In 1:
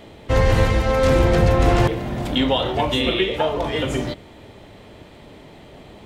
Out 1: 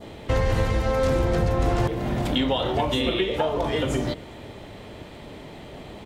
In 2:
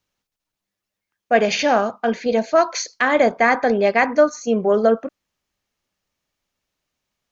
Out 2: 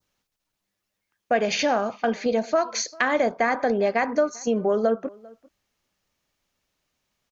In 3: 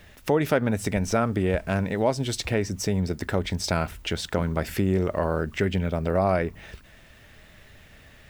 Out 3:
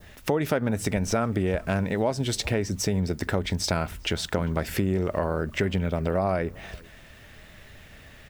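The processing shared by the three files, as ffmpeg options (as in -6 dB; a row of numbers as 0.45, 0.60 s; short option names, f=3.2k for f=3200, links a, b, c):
-filter_complex "[0:a]adynamicequalizer=threshold=0.0158:dfrequency=2500:dqfactor=1.1:tfrequency=2500:tqfactor=1.1:attack=5:release=100:ratio=0.375:range=2:mode=cutabove:tftype=bell,acompressor=threshold=-25dB:ratio=2.5,asplit=2[a][b];[b]adelay=396.5,volume=-24dB,highshelf=f=4k:g=-8.92[c];[a][c]amix=inputs=2:normalize=0,volume=2.5dB"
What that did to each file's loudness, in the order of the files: -4.5, -5.5, -1.0 LU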